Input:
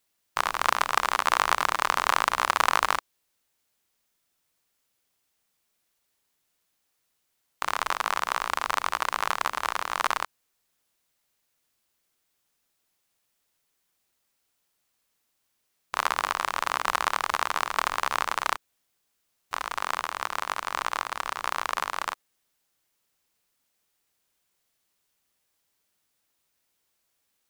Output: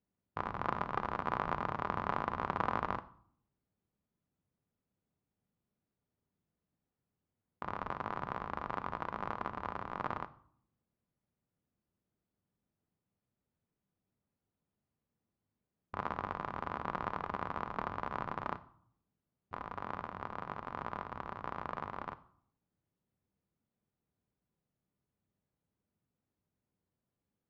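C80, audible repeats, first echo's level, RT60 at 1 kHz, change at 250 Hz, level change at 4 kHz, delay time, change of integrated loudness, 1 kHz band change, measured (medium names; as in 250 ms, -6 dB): 21.5 dB, no echo, no echo, 0.60 s, +2.5 dB, -24.5 dB, no echo, -12.0 dB, -11.0 dB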